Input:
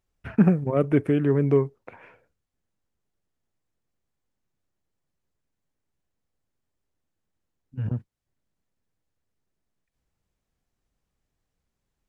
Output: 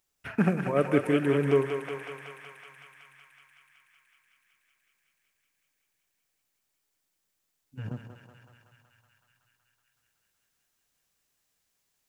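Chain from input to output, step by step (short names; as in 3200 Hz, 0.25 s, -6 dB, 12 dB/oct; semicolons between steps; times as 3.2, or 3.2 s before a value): tilt +3 dB/oct; on a send: thinning echo 0.187 s, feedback 83%, high-pass 570 Hz, level -4.5 dB; on the sum: shoebox room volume 1500 m³, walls mixed, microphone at 0.35 m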